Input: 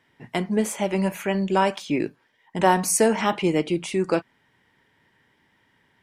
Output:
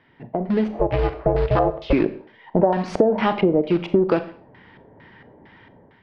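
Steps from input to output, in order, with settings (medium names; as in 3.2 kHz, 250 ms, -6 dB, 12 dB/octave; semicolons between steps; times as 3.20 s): companding laws mixed up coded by mu; 0.67–1.93 s: ring modulator 250 Hz; in parallel at -7.5 dB: bit crusher 4-bit; on the sum: LFO low-pass square 2.2 Hz 620–5100 Hz; distance through air 450 m; Schroeder reverb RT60 0.38 s, combs from 29 ms, DRR 12.5 dB; compression 12:1, threshold -23 dBFS, peak gain reduction 17 dB; treble shelf 8.9 kHz -6 dB; level rider gain up to 9.5 dB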